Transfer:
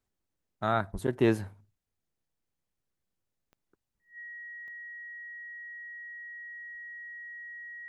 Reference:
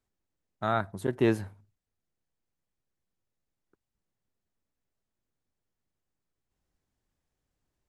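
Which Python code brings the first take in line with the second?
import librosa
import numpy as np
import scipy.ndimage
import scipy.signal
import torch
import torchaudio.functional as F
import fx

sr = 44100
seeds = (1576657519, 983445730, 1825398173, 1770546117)

y = fx.fix_declick_ar(x, sr, threshold=10.0)
y = fx.notch(y, sr, hz=1900.0, q=30.0)
y = fx.highpass(y, sr, hz=140.0, slope=24, at=(0.92, 1.04), fade=0.02)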